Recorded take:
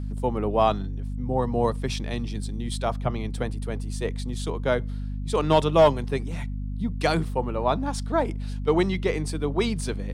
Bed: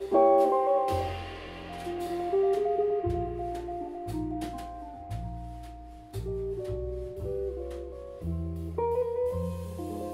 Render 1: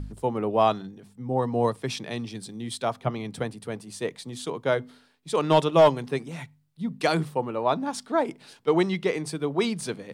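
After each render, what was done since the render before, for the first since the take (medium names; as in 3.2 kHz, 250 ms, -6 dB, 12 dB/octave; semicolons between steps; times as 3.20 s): de-hum 50 Hz, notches 5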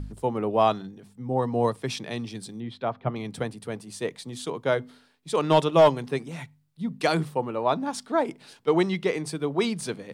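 2.60–3.16 s: distance through air 350 m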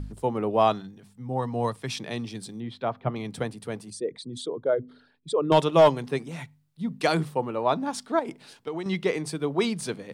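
0.80–1.96 s: peaking EQ 390 Hz -5.5 dB 1.7 oct; 3.90–5.52 s: resonances exaggerated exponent 2; 8.19–8.86 s: compression 12:1, threshold -28 dBFS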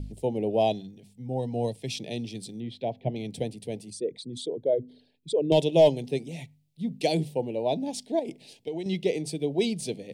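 Chebyshev band-stop 650–2500 Hz, order 2; dynamic bell 1.9 kHz, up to -4 dB, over -48 dBFS, Q 2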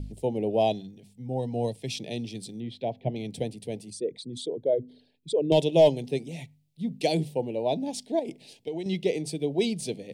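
no audible change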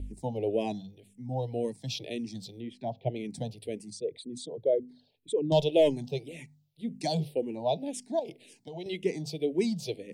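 barber-pole phaser -1.9 Hz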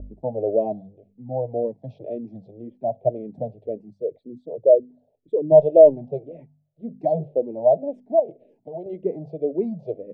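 resonant low-pass 620 Hz, resonance Q 4.9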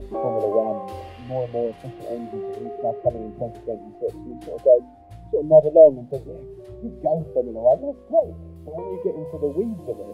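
add bed -6 dB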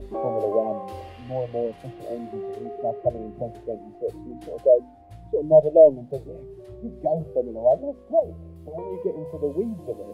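trim -2 dB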